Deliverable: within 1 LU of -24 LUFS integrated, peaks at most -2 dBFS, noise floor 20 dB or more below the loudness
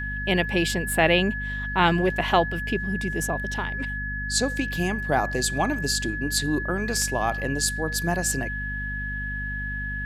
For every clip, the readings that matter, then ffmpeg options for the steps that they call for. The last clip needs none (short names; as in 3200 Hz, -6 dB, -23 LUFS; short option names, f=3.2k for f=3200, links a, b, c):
hum 50 Hz; harmonics up to 250 Hz; hum level -30 dBFS; steady tone 1700 Hz; tone level -30 dBFS; loudness -25.0 LUFS; peak -4.0 dBFS; loudness target -24.0 LUFS
-> -af "bandreject=f=50:t=h:w=4,bandreject=f=100:t=h:w=4,bandreject=f=150:t=h:w=4,bandreject=f=200:t=h:w=4,bandreject=f=250:t=h:w=4"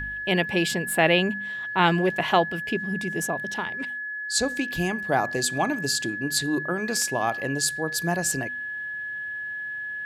hum none; steady tone 1700 Hz; tone level -30 dBFS
-> -af "bandreject=f=1.7k:w=30"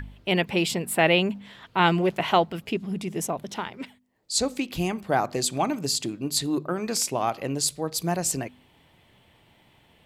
steady tone none; loudness -25.5 LUFS; peak -5.0 dBFS; loudness target -24.0 LUFS
-> -af "volume=1.5dB"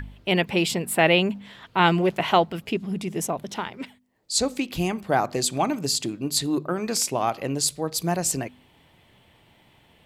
loudness -24.0 LUFS; peak -3.5 dBFS; noise floor -59 dBFS